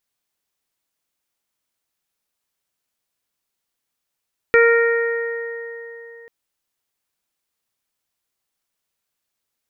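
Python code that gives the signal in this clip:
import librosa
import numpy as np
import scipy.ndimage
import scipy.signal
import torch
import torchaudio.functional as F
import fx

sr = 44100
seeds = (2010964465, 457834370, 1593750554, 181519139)

y = fx.additive(sr, length_s=1.74, hz=465.0, level_db=-10.5, upper_db=(-20.0, -6.0, -4.0, -10.0), decay_s=3.35, upper_decays_s=(3.38, 2.03, 3.43, 1.5))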